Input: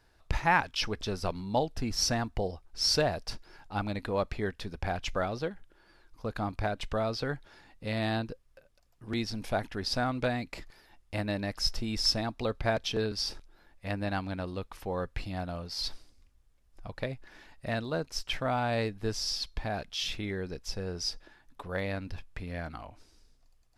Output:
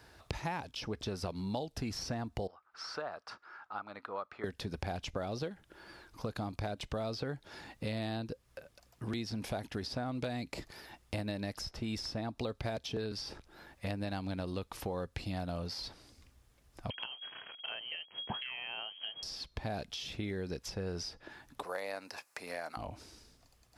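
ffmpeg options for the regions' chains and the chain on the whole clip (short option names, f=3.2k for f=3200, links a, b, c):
-filter_complex "[0:a]asettb=1/sr,asplit=3[a][b][c];[a]atrim=end=2.474[d];[b]atrim=start=2.47:end=4.44,asetpts=PTS-STARTPTS,afade=t=in:d=0.004:c=qsin,afade=t=out:st=1.966:d=0.004:c=qsin,bandpass=f=1.3k:t=q:w=5.3,acontrast=66[e];[c]atrim=start=4.436[f];[d][e]acrossfade=d=0.004:c1=hsin:c2=qsin[g];[g][f]acrossfade=d=0.004:c1=qsin:c2=hsin,asettb=1/sr,asplit=3[h][i][j];[h]atrim=end=16.904[k];[i]atrim=start=16.9:end=19.23,asetpts=PTS-STARTPTS,afade=t=in:d=0.004:c=qsin,afade=t=out:st=2.326:d=0.004:c=qsin,acrusher=bits=7:mix=0:aa=0.5,lowpass=f=2.8k:t=q:w=0.5098,lowpass=f=2.8k:t=q:w=0.6013,lowpass=f=2.8k:t=q:w=0.9,lowpass=f=2.8k:t=q:w=2.563,afreqshift=-3300[l];[j]atrim=start=19.226[m];[k][l]acrossfade=d=0.004:c1=hsin:c2=qsin[n];[n][m]acrossfade=d=0.004:c1=qsin:c2=hsin,asettb=1/sr,asplit=3[o][p][q];[o]atrim=end=21.634[r];[p]atrim=start=21.63:end=22.77,asetpts=PTS-STARTPTS,afade=t=in:d=0.004:c=qsin,afade=t=out:st=1.136:d=0.004:c=qsin,highpass=900,equalizer=f=3.3k:t=o:w=0.59:g=-12.5,acontrast=55[s];[q]atrim=start=22.766[t];[r][s]acrossfade=d=0.004:c1=hsin:c2=qsin[u];[u][t]acrossfade=d=0.004:c1=qsin:c2=hsin,acompressor=threshold=-44dB:ratio=2,highpass=65,acrossover=split=880|3000[v][w][x];[v]acompressor=threshold=-44dB:ratio=4[y];[w]acompressor=threshold=-60dB:ratio=4[z];[x]acompressor=threshold=-54dB:ratio=4[aa];[y][z][aa]amix=inputs=3:normalize=0,volume=9dB"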